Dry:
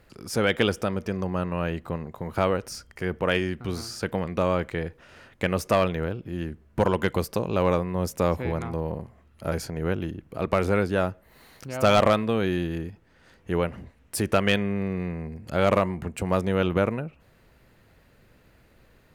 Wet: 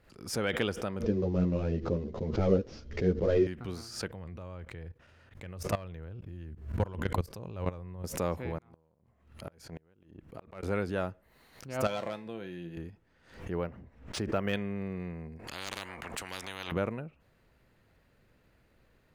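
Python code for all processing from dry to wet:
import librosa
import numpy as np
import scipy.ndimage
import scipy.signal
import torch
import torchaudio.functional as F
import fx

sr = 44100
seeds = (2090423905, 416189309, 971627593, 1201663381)

y = fx.chain(x, sr, fx.cvsd(bps=32000),
    fx.low_shelf_res(hz=640.0, db=11.5, q=1.5),
    fx.ensemble(), at=(1.03, 3.47))
y = fx.chain(y, sr, fx.peak_eq(hz=90.0, db=12.0, octaves=1.1),
    fx.level_steps(step_db=17), at=(4.08, 8.04))
y = fx.chain(y, sr, fx.transient(attack_db=-3, sustain_db=-7),
    fx.gate_flip(shuts_db=-20.0, range_db=-31), at=(8.58, 10.63))
y = fx.chain(y, sr, fx.highpass(hz=120.0, slope=12),
    fx.notch(hz=1200.0, q=7.2),
    fx.comb_fb(f0_hz=170.0, decay_s=0.31, harmonics='all', damping=0.0, mix_pct=70), at=(11.87, 12.77))
y = fx.chain(y, sr, fx.peak_eq(hz=4500.0, db=-8.5, octaves=1.9),
    fx.resample_linear(factor=3), at=(13.5, 14.53))
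y = fx.chain(y, sr, fx.high_shelf(hz=2200.0, db=-9.5),
    fx.spectral_comp(ratio=10.0), at=(15.39, 16.72))
y = fx.high_shelf(y, sr, hz=7700.0, db=-4.0)
y = fx.pre_swell(y, sr, db_per_s=110.0)
y = y * librosa.db_to_amplitude(-8.5)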